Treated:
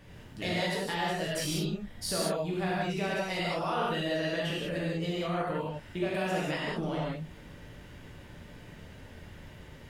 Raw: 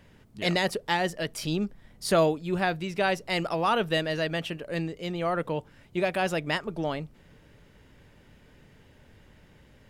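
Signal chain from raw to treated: compressor 6:1, threshold -36 dBFS, peak gain reduction 17.5 dB; non-linear reverb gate 0.22 s flat, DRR -6.5 dB

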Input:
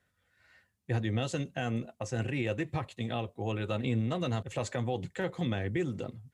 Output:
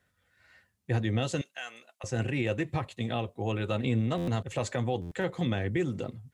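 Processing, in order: 1.41–2.04 Bessel high-pass 1600 Hz, order 2; stuck buffer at 4.17/5.01, samples 512, times 8; gain +2.5 dB

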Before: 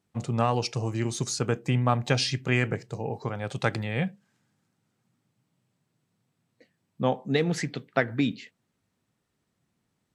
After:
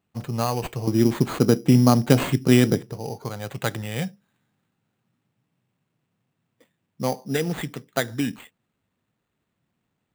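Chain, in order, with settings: 0.87–2.93 bell 260 Hz +14 dB 1.9 oct; sample-rate reducer 5400 Hz, jitter 0%

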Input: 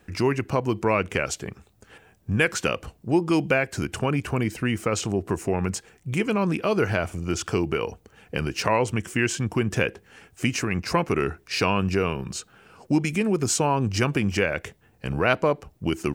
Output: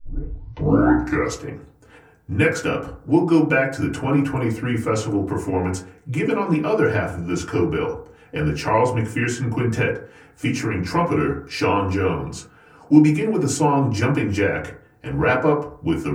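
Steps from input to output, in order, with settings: tape start at the beginning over 1.43 s; FDN reverb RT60 0.5 s, low-frequency decay 1×, high-frequency decay 0.3×, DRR -7 dB; gain -5.5 dB

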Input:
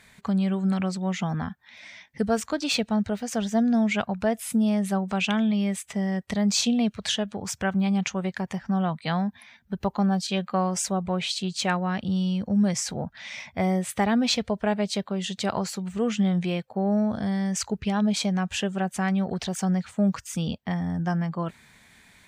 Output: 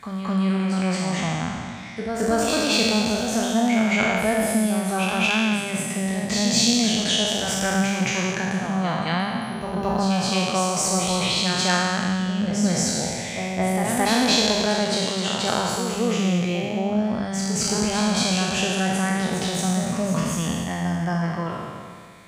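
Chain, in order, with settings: spectral trails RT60 2.04 s; notches 50/100/150/200 Hz; reverse echo 0.22 s -6.5 dB

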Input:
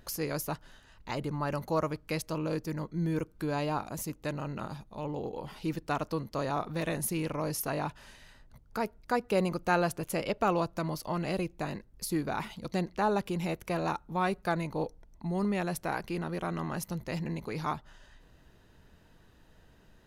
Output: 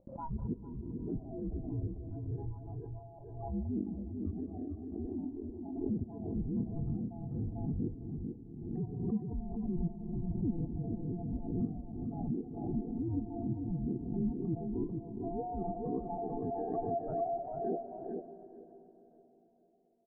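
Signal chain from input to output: band-swap scrambler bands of 500 Hz; spectral noise reduction 24 dB; gate with hold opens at -58 dBFS; LPF 1100 Hz 24 dB/oct; treble ducked by the level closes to 630 Hz, closed at -32 dBFS; dynamic EQ 840 Hz, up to -5 dB, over -49 dBFS, Q 2; reverse; compressor 6:1, threshold -40 dBFS, peak gain reduction 14 dB; reverse; low-pass sweep 250 Hz -> 550 Hz, 14.29–15.64; feedback echo 0.444 s, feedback 17%, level -5 dB; on a send at -11 dB: reverb RT60 4.2 s, pre-delay 93 ms; on the sum: backwards sustainer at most 48 dB/s; gain +4 dB

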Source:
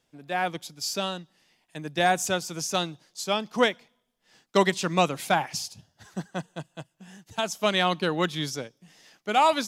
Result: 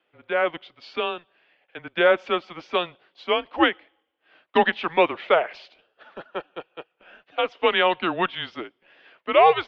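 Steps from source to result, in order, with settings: mistuned SSB -170 Hz 510–3300 Hz; gain +5.5 dB

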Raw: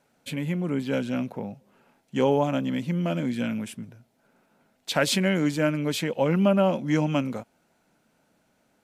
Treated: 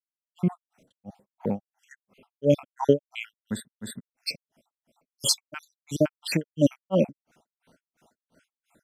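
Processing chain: random spectral dropouts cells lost 60%; grains 0.237 s, grains 2.9/s, spray 0.732 s, pitch spread up and down by 0 st; gain +8.5 dB

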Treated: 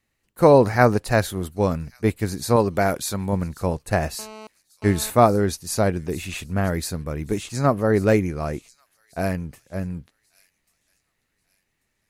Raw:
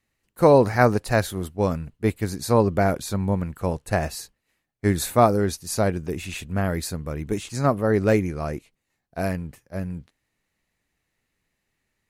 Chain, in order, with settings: 2.56–3.33 tilt +1.5 dB/oct; thin delay 1.139 s, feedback 31%, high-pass 4100 Hz, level -16 dB; 4.19–5.1 GSM buzz -41 dBFS; gain +1.5 dB

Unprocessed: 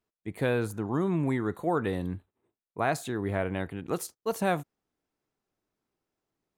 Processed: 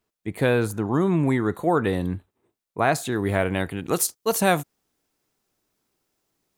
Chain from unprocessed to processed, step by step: high shelf 3300 Hz +2 dB, from 3.12 s +10 dB; gain +6.5 dB

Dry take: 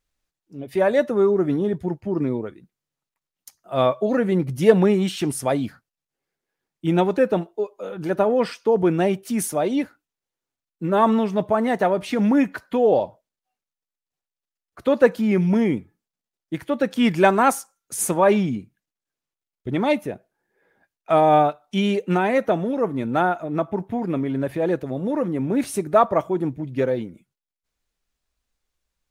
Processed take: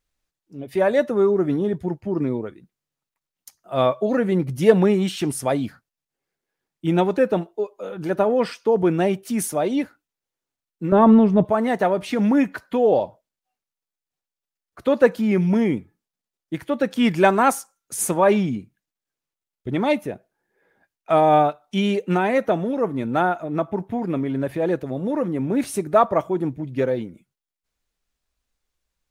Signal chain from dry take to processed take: 10.92–11.45 tilt -3.5 dB/oct

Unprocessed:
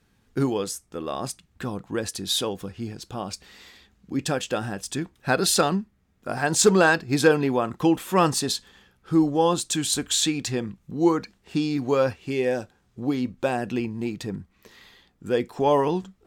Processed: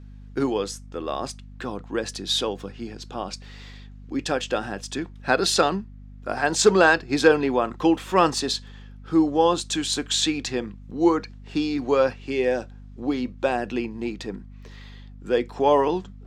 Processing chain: three-band isolator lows -14 dB, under 220 Hz, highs -16 dB, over 7000 Hz; hum 50 Hz, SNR 18 dB; gain +2 dB

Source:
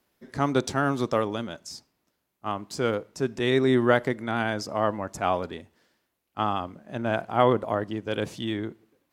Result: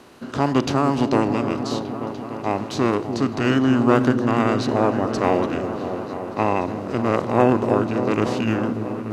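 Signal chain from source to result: per-bin compression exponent 0.6; formant shift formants -4 st; repeats that get brighter 0.294 s, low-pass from 400 Hz, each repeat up 1 oct, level -6 dB; gain +2 dB

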